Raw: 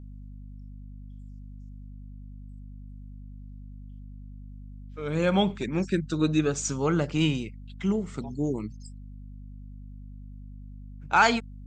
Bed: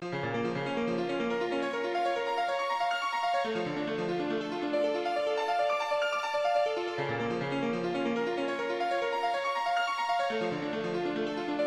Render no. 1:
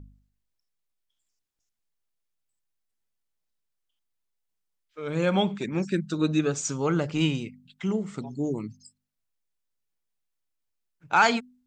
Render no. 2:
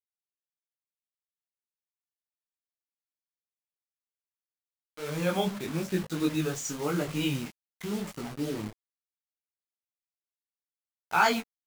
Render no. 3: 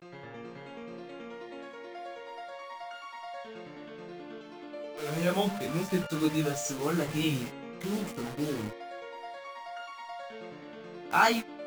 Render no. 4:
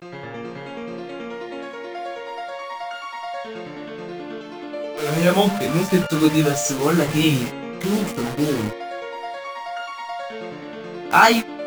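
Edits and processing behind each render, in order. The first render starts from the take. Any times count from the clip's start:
de-hum 50 Hz, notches 5
requantised 6-bit, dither none; detuned doubles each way 34 cents
add bed -12.5 dB
gain +11.5 dB; limiter -1 dBFS, peak gain reduction 2 dB

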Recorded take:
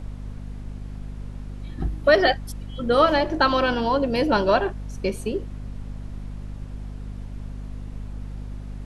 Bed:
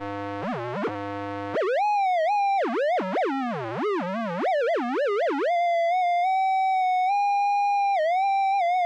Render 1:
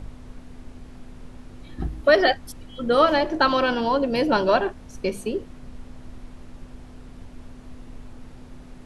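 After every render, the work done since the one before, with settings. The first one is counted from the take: de-hum 50 Hz, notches 4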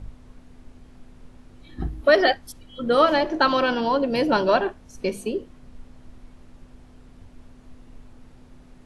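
noise print and reduce 6 dB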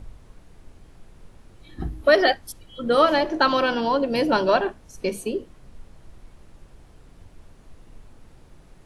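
high shelf 11000 Hz +9.5 dB; notches 50/100/150/200/250 Hz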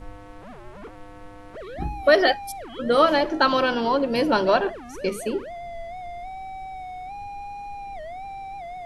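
add bed -13.5 dB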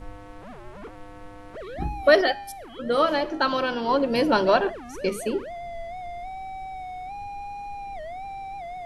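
2.21–3.89 resonator 54 Hz, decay 0.76 s, harmonics odd, mix 40%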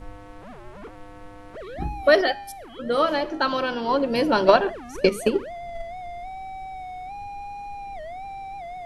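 4.37–5.94 transient shaper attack +10 dB, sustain +1 dB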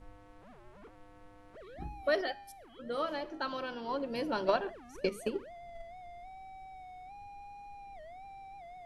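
gain -13.5 dB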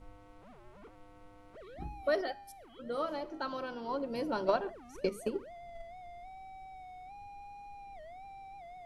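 notch 1700 Hz, Q 12; dynamic EQ 2900 Hz, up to -6 dB, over -55 dBFS, Q 1.1

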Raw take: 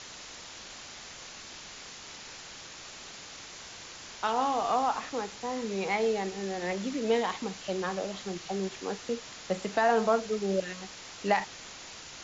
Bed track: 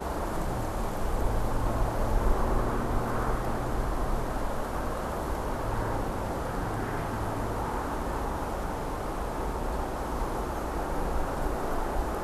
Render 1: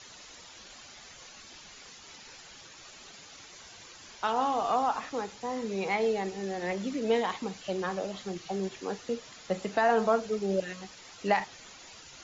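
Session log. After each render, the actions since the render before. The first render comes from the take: denoiser 9 dB, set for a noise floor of -46 dBFS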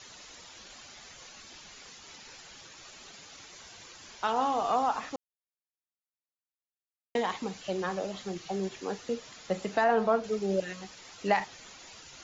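5.16–7.15 mute; 9.84–10.24 air absorption 130 m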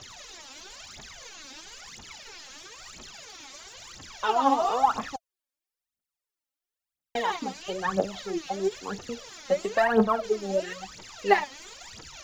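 phaser 1 Hz, delay 3.9 ms, feedback 80%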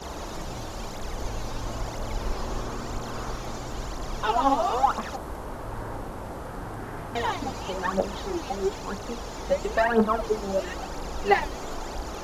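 add bed track -4.5 dB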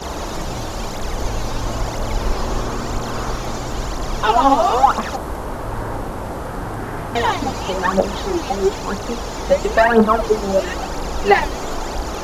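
gain +9.5 dB; limiter -1 dBFS, peak gain reduction 2.5 dB

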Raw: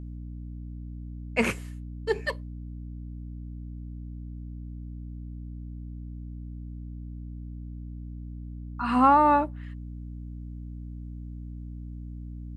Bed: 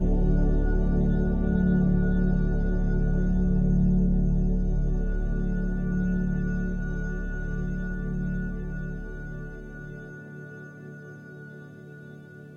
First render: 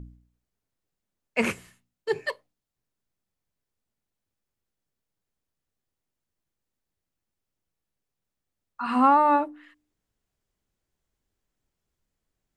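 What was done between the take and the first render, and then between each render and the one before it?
de-hum 60 Hz, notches 5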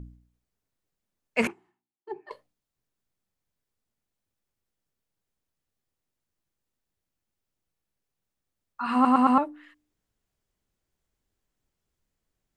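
1.47–2.31 double band-pass 540 Hz, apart 1.2 oct; 8.94 stutter in place 0.11 s, 4 plays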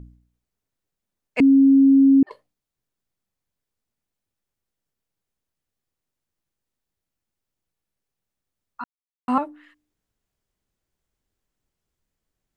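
1.4–2.23 bleep 272 Hz -10 dBFS; 8.84–9.28 mute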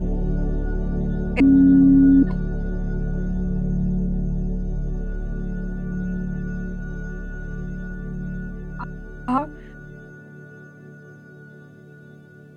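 add bed -0.5 dB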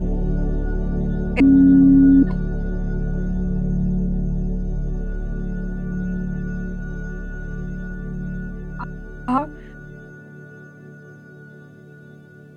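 gain +1.5 dB

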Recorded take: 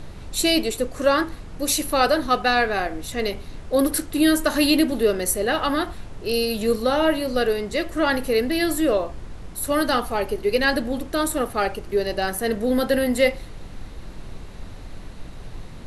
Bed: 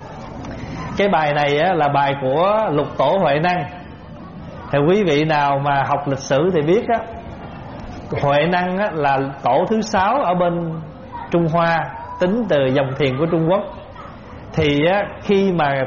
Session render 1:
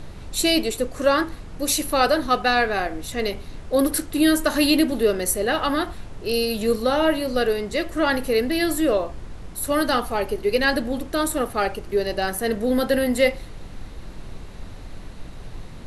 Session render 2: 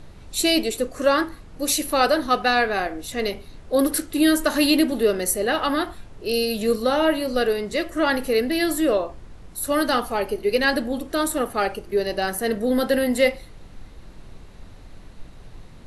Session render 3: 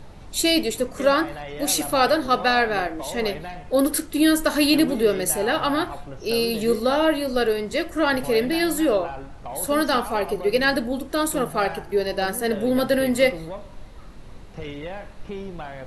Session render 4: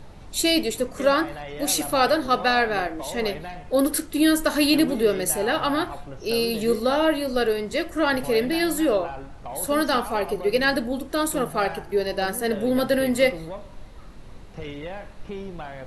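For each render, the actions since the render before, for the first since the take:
nothing audible
noise print and reduce 6 dB
add bed -18.5 dB
gain -1 dB

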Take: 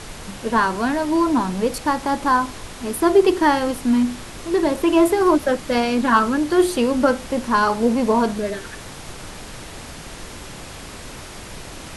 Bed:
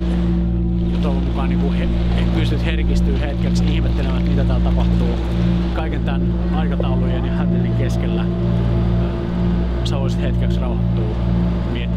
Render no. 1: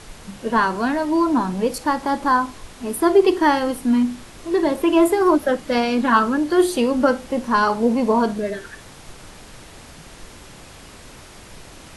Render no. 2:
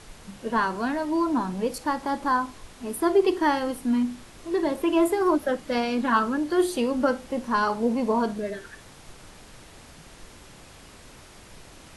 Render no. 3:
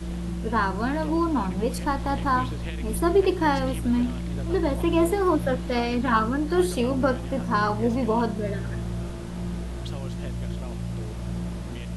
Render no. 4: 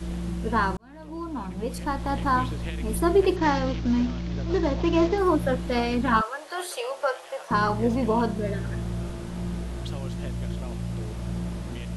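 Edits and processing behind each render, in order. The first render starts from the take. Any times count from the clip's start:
noise print and reduce 6 dB
gain -6 dB
add bed -13.5 dB
0.77–2.31 fade in; 3.36–5.18 CVSD 32 kbps; 6.21–7.51 inverse Chebyshev high-pass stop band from 260 Hz

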